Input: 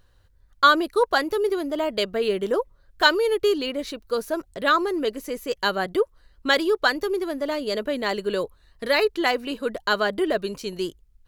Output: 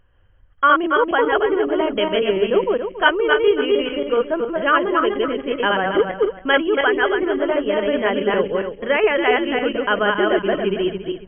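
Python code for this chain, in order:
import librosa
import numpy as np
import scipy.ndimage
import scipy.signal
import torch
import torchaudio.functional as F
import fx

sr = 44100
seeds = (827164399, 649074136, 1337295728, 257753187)

p1 = fx.reverse_delay_fb(x, sr, ms=139, feedback_pct=49, wet_db=-1)
p2 = fx.rider(p1, sr, range_db=4, speed_s=0.5)
p3 = p1 + F.gain(torch.from_numpy(p2), 0.0).numpy()
p4 = fx.brickwall_lowpass(p3, sr, high_hz=3300.0)
y = F.gain(torch.from_numpy(p4), -3.5).numpy()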